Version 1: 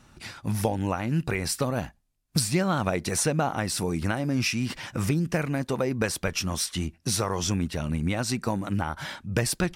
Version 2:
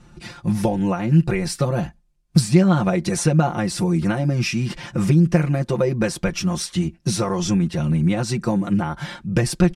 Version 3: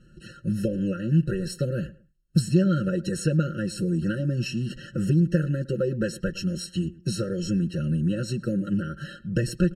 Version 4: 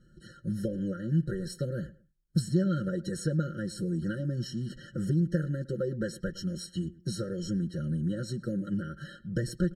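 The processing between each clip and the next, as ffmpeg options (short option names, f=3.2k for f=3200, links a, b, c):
-af "lowpass=10k,lowshelf=f=500:g=8.5,aecho=1:1:5.7:0.85,volume=-1dB"
-filter_complex "[0:a]asplit=2[a][b];[b]adelay=111,lowpass=f=2k:p=1,volume=-19dB,asplit=2[c][d];[d]adelay=111,lowpass=f=2k:p=1,volume=0.25[e];[a][c][e]amix=inputs=3:normalize=0,afftfilt=real='re*eq(mod(floor(b*sr/1024/640),2),0)':imag='im*eq(mod(floor(b*sr/1024/640),2),0)':win_size=1024:overlap=0.75,volume=-5.5dB"
-af "asuperstop=centerf=2700:order=20:qfactor=7.3,volume=-6dB"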